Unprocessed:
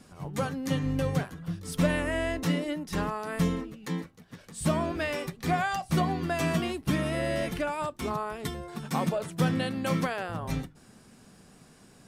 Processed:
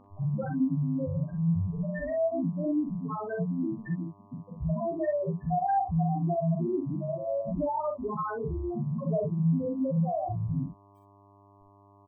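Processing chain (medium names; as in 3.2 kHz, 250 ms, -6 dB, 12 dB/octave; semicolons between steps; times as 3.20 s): steep low-pass 5 kHz 72 dB/octave; in parallel at -3 dB: saturation -24.5 dBFS, distortion -13 dB; on the sum: companded quantiser 2-bit; loudest bins only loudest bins 2; mains buzz 100 Hz, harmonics 12, -59 dBFS -2 dB/octave; on a send: early reflections 43 ms -5 dB, 61 ms -7.5 dB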